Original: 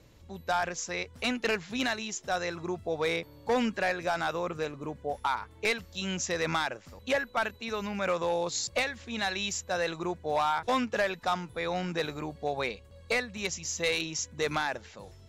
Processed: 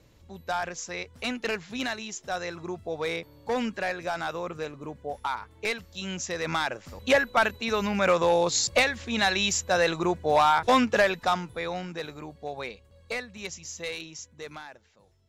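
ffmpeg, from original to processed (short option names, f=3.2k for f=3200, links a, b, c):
-af "volume=7dB,afade=t=in:st=6.43:d=0.62:silence=0.398107,afade=t=out:st=10.94:d=0.95:silence=0.281838,afade=t=out:st=13.52:d=1.25:silence=0.298538"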